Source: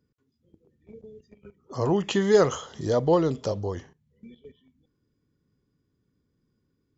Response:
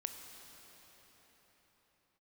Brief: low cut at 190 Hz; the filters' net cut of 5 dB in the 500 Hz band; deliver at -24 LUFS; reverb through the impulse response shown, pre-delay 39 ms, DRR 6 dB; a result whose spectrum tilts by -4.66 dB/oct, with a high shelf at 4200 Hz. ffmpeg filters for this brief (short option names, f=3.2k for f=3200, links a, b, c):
-filter_complex "[0:a]highpass=190,equalizer=f=500:t=o:g=-6,highshelf=f=4.2k:g=3,asplit=2[a][b];[1:a]atrim=start_sample=2205,adelay=39[c];[b][c]afir=irnorm=-1:irlink=0,volume=-5dB[d];[a][d]amix=inputs=2:normalize=0,volume=3.5dB"